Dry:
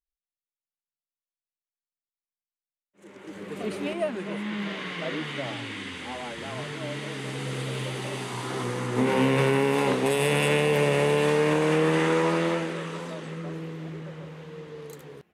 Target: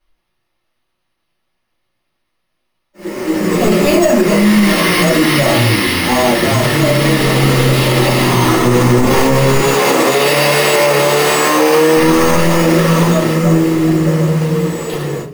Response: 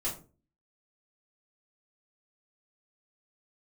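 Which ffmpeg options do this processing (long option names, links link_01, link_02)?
-filter_complex "[0:a]acrusher=samples=6:mix=1:aa=0.000001,asoftclip=type=tanh:threshold=-27.5dB,asettb=1/sr,asplit=3[link_01][link_02][link_03];[link_01]atrim=end=9.604[link_04];[link_02]atrim=start=9.6:end=11.97,asetpts=PTS-STARTPTS,afade=type=in:duration=0.004:curve=qsin,afade=type=out:start_time=2.366:duration=0.004:curve=qsin,highpass=290[link_05];[link_03]atrim=start=11.966[link_06];[link_04][link_05]acrossfade=duration=0.004:curve1=hsin:curve2=qsin[link_07];[link_07][link_06]acrossfade=duration=0.004:curve1=qsin:curve2=hsin[link_08];[1:a]atrim=start_sample=2205[link_09];[link_08][link_09]afir=irnorm=-1:irlink=0,alimiter=level_in=20.5dB:limit=-1dB:release=50:level=0:latency=1,volume=-1dB"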